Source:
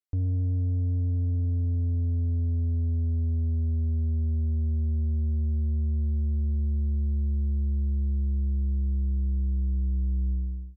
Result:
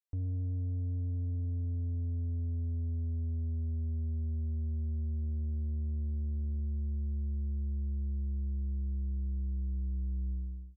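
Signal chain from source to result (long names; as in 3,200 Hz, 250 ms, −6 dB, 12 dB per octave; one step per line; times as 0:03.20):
0:05.21–0:06.61: highs frequency-modulated by the lows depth 0.15 ms
level −8 dB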